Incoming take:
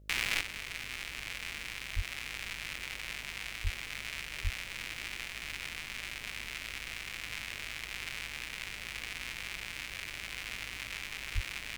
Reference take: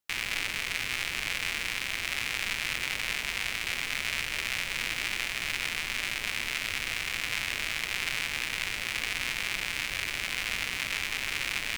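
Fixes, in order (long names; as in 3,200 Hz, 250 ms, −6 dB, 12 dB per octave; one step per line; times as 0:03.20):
hum removal 51.2 Hz, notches 12
high-pass at the plosives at 0:01.95/0:03.63/0:04.43/0:11.34
level 0 dB, from 0:00.41 +9 dB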